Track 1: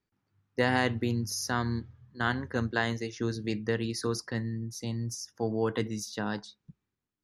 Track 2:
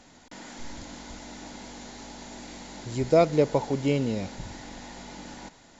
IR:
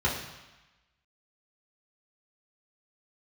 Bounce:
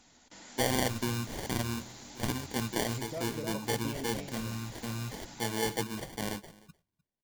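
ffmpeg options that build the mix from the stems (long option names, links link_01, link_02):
-filter_complex "[0:a]acrusher=samples=34:mix=1:aa=0.000001,volume=0dB,asplit=2[link_01][link_02];[link_02]volume=-23.5dB[link_03];[1:a]acompressor=threshold=-30dB:ratio=3,volume=-6dB,asplit=2[link_04][link_05];[link_05]volume=-4.5dB[link_06];[link_03][link_06]amix=inputs=2:normalize=0,aecho=0:1:303:1[link_07];[link_01][link_04][link_07]amix=inputs=3:normalize=0,highshelf=frequency=2800:gain=8,flanger=delay=0.8:depth=5.3:regen=-54:speed=1.3:shape=sinusoidal"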